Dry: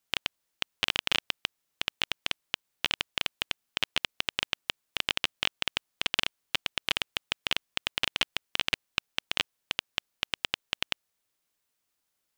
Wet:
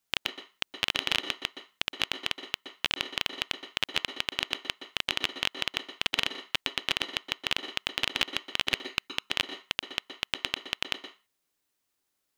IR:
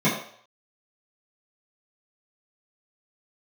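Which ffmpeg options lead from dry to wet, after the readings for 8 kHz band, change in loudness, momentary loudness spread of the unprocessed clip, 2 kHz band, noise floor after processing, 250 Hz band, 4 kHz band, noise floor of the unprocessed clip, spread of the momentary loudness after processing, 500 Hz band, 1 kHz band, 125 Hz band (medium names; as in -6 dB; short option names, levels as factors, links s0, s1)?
0.0 dB, +0.5 dB, 6 LU, 0.0 dB, -80 dBFS, +3.0 dB, +0.5 dB, -81 dBFS, 6 LU, +2.0 dB, +0.5 dB, 0.0 dB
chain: -filter_complex "[0:a]asplit=2[s0][s1];[1:a]atrim=start_sample=2205,asetrate=79380,aresample=44100,adelay=116[s2];[s1][s2]afir=irnorm=-1:irlink=0,volume=0.0794[s3];[s0][s3]amix=inputs=2:normalize=0"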